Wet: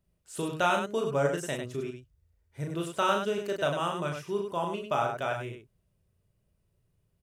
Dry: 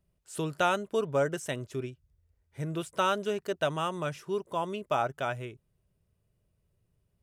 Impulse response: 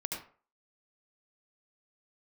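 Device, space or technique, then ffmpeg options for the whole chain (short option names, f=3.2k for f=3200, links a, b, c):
slapback doubling: -filter_complex "[0:a]asplit=3[a][b][c];[b]adelay=35,volume=-4dB[d];[c]adelay=100,volume=-6dB[e];[a][d][e]amix=inputs=3:normalize=0,volume=-1dB"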